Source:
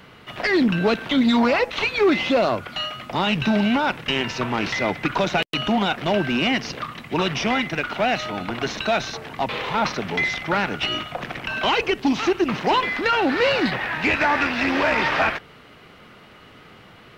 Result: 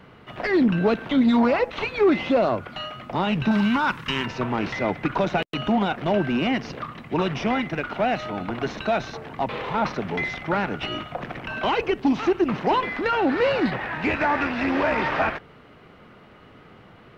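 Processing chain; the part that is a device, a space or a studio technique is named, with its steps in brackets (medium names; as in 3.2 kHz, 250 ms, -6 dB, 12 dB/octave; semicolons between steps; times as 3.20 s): through cloth (treble shelf 2.3 kHz -12.5 dB); 3.51–4.26 s: FFT filter 200 Hz 0 dB, 730 Hz -10 dB, 1 kHz +7 dB, 2.3 kHz +2 dB, 6.4 kHz +9 dB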